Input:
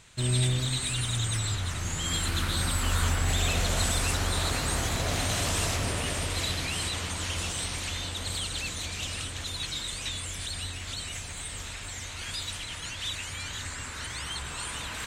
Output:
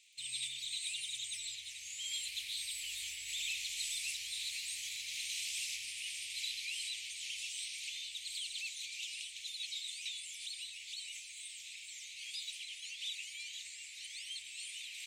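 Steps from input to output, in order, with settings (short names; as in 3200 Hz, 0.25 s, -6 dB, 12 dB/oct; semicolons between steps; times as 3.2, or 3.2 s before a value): crackle 58/s -44 dBFS; elliptic high-pass 2300 Hz, stop band 40 dB; high shelf 4600 Hz -6.5 dB; gain -4 dB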